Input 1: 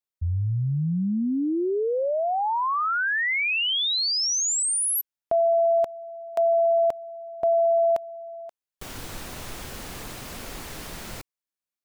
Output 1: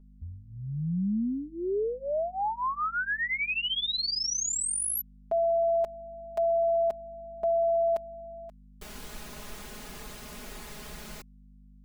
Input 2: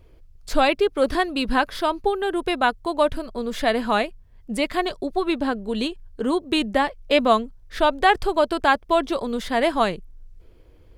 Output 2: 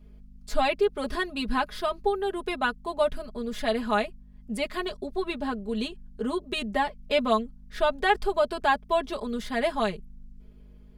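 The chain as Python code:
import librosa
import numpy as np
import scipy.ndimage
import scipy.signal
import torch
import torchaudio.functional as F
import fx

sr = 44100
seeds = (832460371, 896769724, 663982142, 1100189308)

y = fx.add_hum(x, sr, base_hz=50, snr_db=22)
y = y + 0.92 * np.pad(y, (int(4.8 * sr / 1000.0), 0))[:len(y)]
y = F.gain(torch.from_numpy(y), -8.5).numpy()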